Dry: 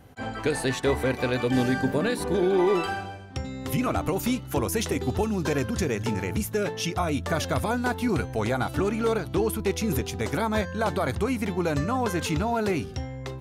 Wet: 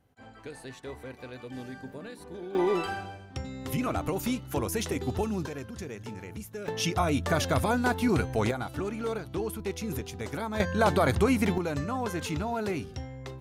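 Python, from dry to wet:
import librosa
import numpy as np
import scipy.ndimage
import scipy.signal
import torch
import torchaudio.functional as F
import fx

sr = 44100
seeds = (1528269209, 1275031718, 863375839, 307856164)

y = fx.gain(x, sr, db=fx.steps((0.0, -17.0), (2.55, -4.0), (5.46, -12.5), (6.68, 0.0), (8.51, -7.5), (10.6, 2.5), (11.58, -5.5)))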